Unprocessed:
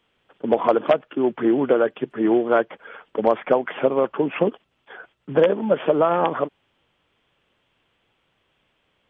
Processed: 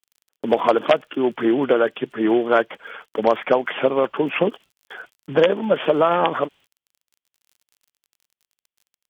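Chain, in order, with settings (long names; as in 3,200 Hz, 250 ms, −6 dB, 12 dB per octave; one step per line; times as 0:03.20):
noise gate −45 dBFS, range −35 dB
surface crackle 33 per second −51 dBFS
high-shelf EQ 2,200 Hz +12 dB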